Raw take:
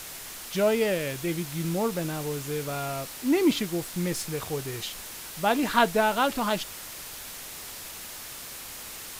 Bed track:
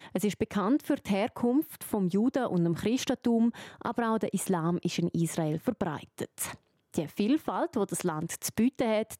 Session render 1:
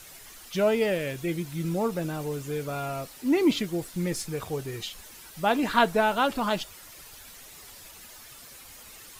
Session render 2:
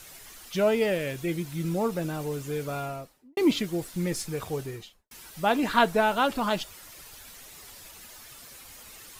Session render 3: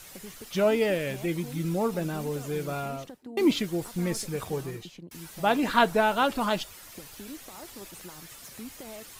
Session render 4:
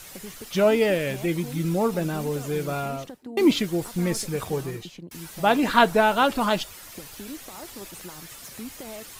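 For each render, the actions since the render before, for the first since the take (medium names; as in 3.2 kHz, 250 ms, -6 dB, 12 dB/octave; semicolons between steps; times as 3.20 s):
noise reduction 10 dB, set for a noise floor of -41 dBFS
2.72–3.37 s: studio fade out; 4.58–5.11 s: studio fade out
add bed track -16.5 dB
trim +4 dB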